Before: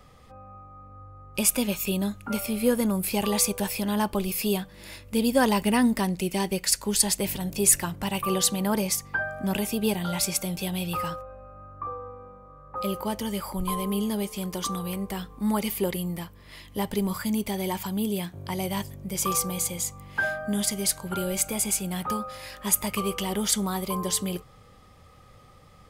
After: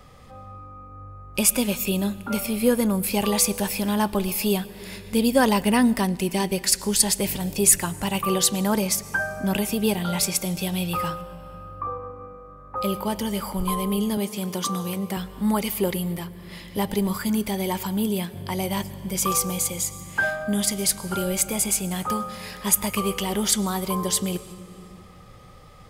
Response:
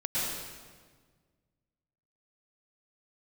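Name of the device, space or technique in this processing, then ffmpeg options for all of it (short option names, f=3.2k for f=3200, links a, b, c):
compressed reverb return: -filter_complex "[0:a]asplit=2[a][b];[1:a]atrim=start_sample=2205[c];[b][c]afir=irnorm=-1:irlink=0,acompressor=threshold=-28dB:ratio=6,volume=-12.5dB[d];[a][d]amix=inputs=2:normalize=0,asettb=1/sr,asplit=3[e][f][g];[e]atrim=end=14.174[h];[f]atrim=start=14.17:end=15.17,asetpts=PTS-STARTPTS,afade=t=in:d=0.004:c=qsin,afade=t=out:st=0.996:d=0.004:c=qsin,highpass=f=100:w=0.5412,highpass=f=100:w=1.3066[i];[g]atrim=start=15.166[j];[h][i]acrossfade=d=0.004:c1=hsin:c2=qsin[k];[k][j]acrossfade=d=0.004:c1=qsin:c2=hsin,volume=2.5dB"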